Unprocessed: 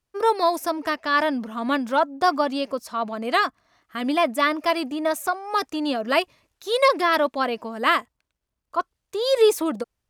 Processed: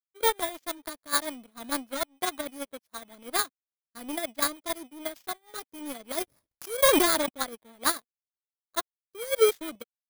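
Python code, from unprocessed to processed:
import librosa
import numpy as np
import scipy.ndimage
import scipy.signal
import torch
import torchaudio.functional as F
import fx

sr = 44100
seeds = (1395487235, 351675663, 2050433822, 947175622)

y = fx.bit_reversed(x, sr, seeds[0], block=16)
y = fx.rotary(y, sr, hz=6.7)
y = fx.power_curve(y, sr, exponent=2.0)
y = 10.0 ** (-13.0 / 20.0) * np.tanh(y / 10.0 ** (-13.0 / 20.0))
y = fx.sustainer(y, sr, db_per_s=24.0, at=(6.1, 7.31))
y = F.gain(torch.from_numpy(y), 6.5).numpy()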